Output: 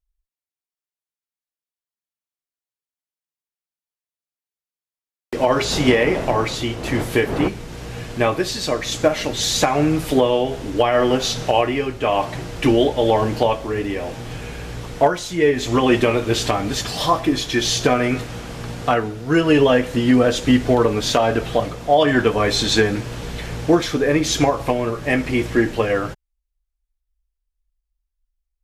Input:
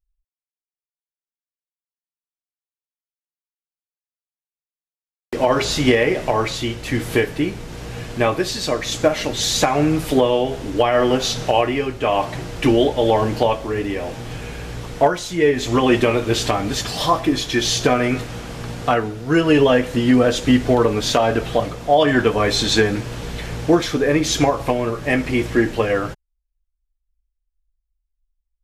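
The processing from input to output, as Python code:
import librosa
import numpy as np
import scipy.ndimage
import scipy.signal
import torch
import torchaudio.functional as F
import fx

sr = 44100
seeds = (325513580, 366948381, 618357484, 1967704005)

y = fx.dmg_wind(x, sr, seeds[0], corner_hz=530.0, level_db=-24.0, at=(5.71, 7.47), fade=0.02)
y = fx.cheby_harmonics(y, sr, harmonics=(3,), levels_db=(-36,), full_scale_db=-3.5)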